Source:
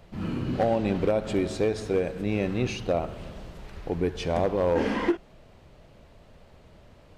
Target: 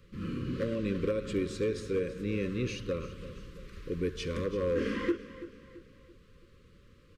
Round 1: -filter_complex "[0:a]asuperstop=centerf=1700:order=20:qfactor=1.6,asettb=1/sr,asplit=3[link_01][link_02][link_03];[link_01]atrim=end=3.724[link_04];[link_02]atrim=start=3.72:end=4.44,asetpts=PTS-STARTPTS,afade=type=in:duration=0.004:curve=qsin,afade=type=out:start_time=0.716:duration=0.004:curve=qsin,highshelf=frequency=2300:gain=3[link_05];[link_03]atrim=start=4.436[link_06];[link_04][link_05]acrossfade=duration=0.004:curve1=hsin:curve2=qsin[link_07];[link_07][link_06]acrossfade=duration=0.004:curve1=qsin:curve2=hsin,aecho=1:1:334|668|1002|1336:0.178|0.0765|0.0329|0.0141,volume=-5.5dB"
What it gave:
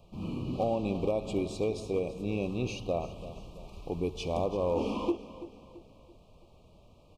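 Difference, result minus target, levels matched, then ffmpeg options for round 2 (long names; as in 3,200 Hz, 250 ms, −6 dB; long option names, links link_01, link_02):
1,000 Hz band +8.5 dB
-filter_complex "[0:a]asuperstop=centerf=760:order=20:qfactor=1.6,asettb=1/sr,asplit=3[link_01][link_02][link_03];[link_01]atrim=end=3.724[link_04];[link_02]atrim=start=3.72:end=4.44,asetpts=PTS-STARTPTS,afade=type=in:duration=0.004:curve=qsin,afade=type=out:start_time=0.716:duration=0.004:curve=qsin,highshelf=frequency=2300:gain=3[link_05];[link_03]atrim=start=4.436[link_06];[link_04][link_05]acrossfade=duration=0.004:curve1=hsin:curve2=qsin[link_07];[link_07][link_06]acrossfade=duration=0.004:curve1=qsin:curve2=hsin,aecho=1:1:334|668|1002|1336:0.178|0.0765|0.0329|0.0141,volume=-5.5dB"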